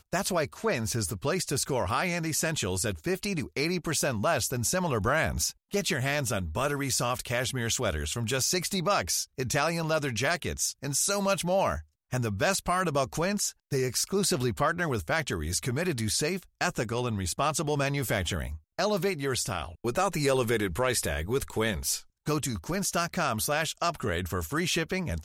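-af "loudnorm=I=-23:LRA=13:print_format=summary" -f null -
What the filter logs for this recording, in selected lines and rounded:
Input Integrated:    -28.7 LUFS
Input True Peak:     -13.4 dBTP
Input LRA:             1.5 LU
Input Threshold:     -38.7 LUFS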